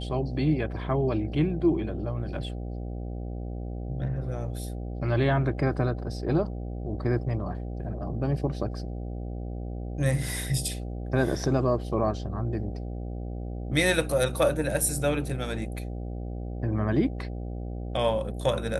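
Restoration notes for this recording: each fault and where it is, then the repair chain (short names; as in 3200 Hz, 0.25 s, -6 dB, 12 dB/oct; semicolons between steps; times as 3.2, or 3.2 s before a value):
buzz 60 Hz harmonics 13 -34 dBFS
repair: de-hum 60 Hz, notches 13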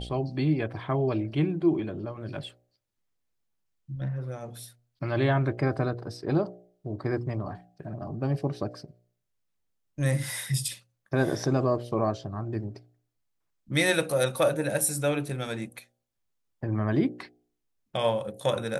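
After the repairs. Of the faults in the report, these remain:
none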